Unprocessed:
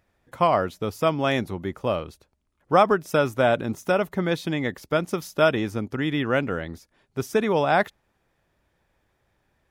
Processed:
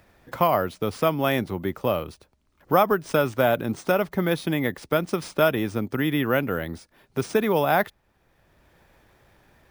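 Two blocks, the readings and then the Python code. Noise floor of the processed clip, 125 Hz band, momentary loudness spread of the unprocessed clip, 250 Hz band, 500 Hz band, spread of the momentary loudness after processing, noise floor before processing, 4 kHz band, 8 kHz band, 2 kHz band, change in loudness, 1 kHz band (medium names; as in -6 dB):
-66 dBFS, +0.5 dB, 10 LU, +0.5 dB, -0.5 dB, 9 LU, -72 dBFS, -0.5 dB, +1.5 dB, -0.5 dB, 0.0 dB, -1.0 dB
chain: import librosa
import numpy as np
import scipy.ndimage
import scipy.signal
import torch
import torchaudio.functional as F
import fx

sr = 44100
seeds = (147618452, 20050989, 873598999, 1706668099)

y = fx.notch(x, sr, hz=6900.0, q=21.0)
y = np.repeat(y[::3], 3)[:len(y)]
y = fx.band_squash(y, sr, depth_pct=40)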